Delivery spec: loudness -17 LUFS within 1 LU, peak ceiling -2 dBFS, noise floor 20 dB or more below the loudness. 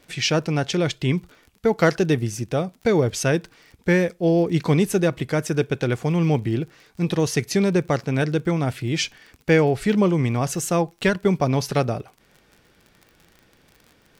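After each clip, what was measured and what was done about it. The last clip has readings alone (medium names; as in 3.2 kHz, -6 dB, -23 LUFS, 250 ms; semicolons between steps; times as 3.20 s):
tick rate 38 per s; loudness -22.0 LUFS; peak level -5.5 dBFS; loudness target -17.0 LUFS
-> de-click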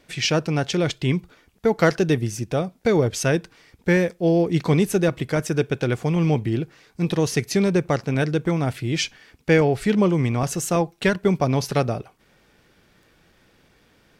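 tick rate 0.28 per s; loudness -22.0 LUFS; peak level -5.5 dBFS; loudness target -17.0 LUFS
-> trim +5 dB; peak limiter -2 dBFS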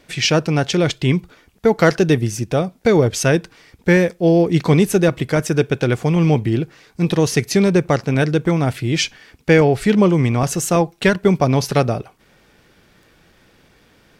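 loudness -17.0 LUFS; peak level -2.0 dBFS; noise floor -54 dBFS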